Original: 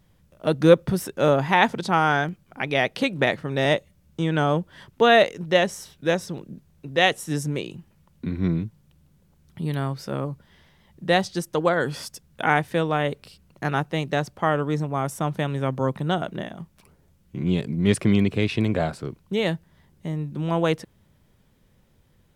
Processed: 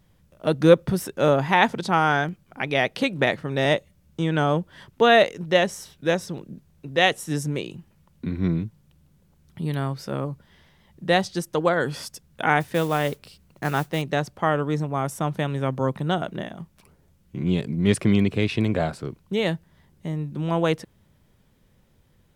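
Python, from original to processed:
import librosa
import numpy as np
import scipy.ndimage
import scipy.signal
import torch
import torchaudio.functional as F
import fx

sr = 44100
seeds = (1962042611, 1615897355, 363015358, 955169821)

y = fx.mod_noise(x, sr, seeds[0], snr_db=20, at=(12.6, 14.02))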